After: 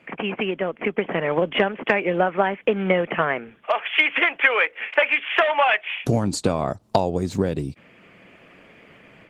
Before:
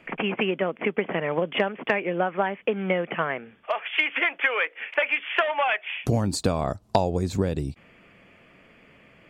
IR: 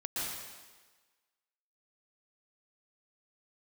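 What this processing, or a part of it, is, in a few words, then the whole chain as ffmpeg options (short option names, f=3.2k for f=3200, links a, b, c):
video call: -filter_complex "[0:a]asettb=1/sr,asplit=3[a][b][c];[a]atrim=end=1.084[d];[b]atrim=start=1.08:end=1.84,asetpts=PTS-STARTPTS,afade=t=in:d=0.004:c=qsin,afade=t=out:st=0.756:d=0.004:c=qsin,lowpass=6.1k[e];[c]atrim=start=1.836[f];[d][e]acrossfade=d=0.004:c1=hsin:c2=qsin[g];[g][f]acrossfade=d=0.004:c1=qsin:c2=hsin,highpass=110,dynaudnorm=f=710:g=3:m=7dB" -ar 48000 -c:a libopus -b:a 16k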